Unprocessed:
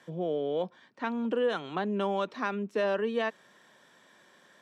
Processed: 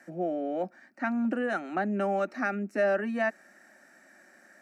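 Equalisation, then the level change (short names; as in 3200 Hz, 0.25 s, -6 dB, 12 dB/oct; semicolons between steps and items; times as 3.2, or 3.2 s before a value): fixed phaser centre 680 Hz, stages 8; +5.0 dB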